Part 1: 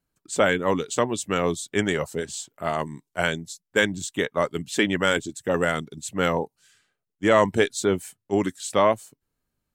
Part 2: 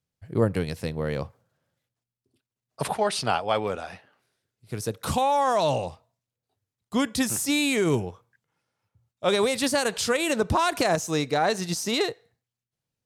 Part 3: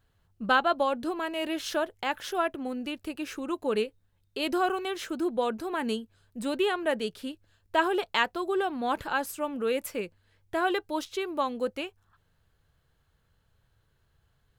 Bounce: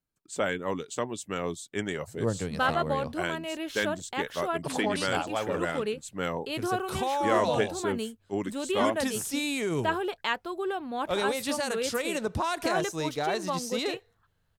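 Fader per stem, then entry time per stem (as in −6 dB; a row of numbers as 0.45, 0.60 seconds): −8.5, −6.5, −3.5 decibels; 0.00, 1.85, 2.10 seconds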